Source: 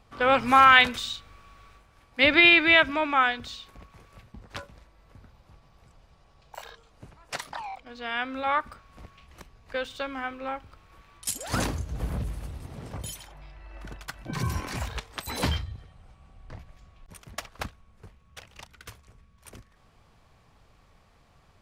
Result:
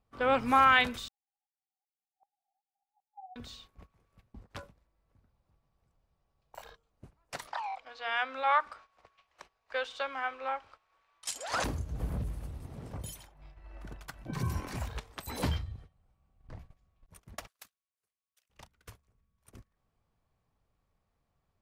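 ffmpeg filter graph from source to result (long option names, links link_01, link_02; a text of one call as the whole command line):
ffmpeg -i in.wav -filter_complex "[0:a]asettb=1/sr,asplit=3[link_01][link_02][link_03];[link_01]atrim=end=1.084[link_04];[link_02]atrim=start=1.08:end=3.36,asetpts=PTS-STARTPTS,afade=type=in:duration=0.004:curve=qsin,afade=type=out:start_time=2.276:duration=0.004:curve=qsin,flanger=delay=5.5:depth=5.9:regen=32:speed=1.3:shape=triangular,asuperpass=centerf=790:order=12:qfactor=7.4,aeval=exprs='val(0)*pow(10,-21*if(lt(mod(-2.6*n/s,1),2*abs(-2.6)/1000),1-mod(-2.6*n/s,1)/(2*abs(-2.6)/1000),(mod(-2.6*n/s,1)-2*abs(-2.6)/1000)/(1-2*abs(-2.6)/1000))/20)':channel_layout=same[link_05];[link_03]atrim=start=3.356[link_06];[link_04][link_05]acrossfade=duration=0.004:curve1=hsin:curve2=qsin[link_07];[link_07][link_06]acrossfade=duration=0.004:curve1=qsin:curve2=hsin,asettb=1/sr,asplit=3[link_08][link_09][link_10];[link_08]atrim=end=7.474[link_11];[link_09]atrim=start=7.47:end=11.64,asetpts=PTS-STARTPTS,afade=type=in:duration=0.004:curve=qsin,afade=type=out:start_time=4.166:duration=0.004:curve=qsin,acrossover=split=530 7500:gain=0.0708 1 0.1[link_12][link_13][link_14];[link_12][link_13][link_14]amix=inputs=3:normalize=0,bandreject=frequency=60:width_type=h:width=6,bandreject=frequency=120:width_type=h:width=6,bandreject=frequency=180:width_type=h:width=6,bandreject=frequency=240:width_type=h:width=6,bandreject=frequency=300:width_type=h:width=6,bandreject=frequency=360:width_type=h:width=6,bandreject=frequency=420:width_type=h:width=6,bandreject=frequency=480:width_type=h:width=6,acontrast=75[link_15];[link_10]atrim=start=11.636[link_16];[link_11][link_15]acrossfade=duration=0.004:curve1=hsin:curve2=qsin[link_17];[link_17][link_16]acrossfade=duration=0.004:curve1=qsin:curve2=hsin,asettb=1/sr,asplit=3[link_18][link_19][link_20];[link_18]atrim=end=17.474[link_21];[link_19]atrim=start=17.47:end=18.5,asetpts=PTS-STARTPTS,afade=type=in:duration=0.004:curve=qsin,afade=type=out:start_time=1.026:duration=0.004:curve=qsin,aderivative,bandreject=frequency=860:width=7.6[link_22];[link_20]atrim=start=18.496[link_23];[link_21][link_22]acrossfade=duration=0.004:curve1=hsin:curve2=qsin[link_24];[link_24][link_23]acrossfade=duration=0.004:curve1=qsin:curve2=hsin,agate=range=-14dB:threshold=-46dB:ratio=16:detection=peak,equalizer=frequency=3400:width=0.33:gain=-5.5,volume=-3.5dB" out.wav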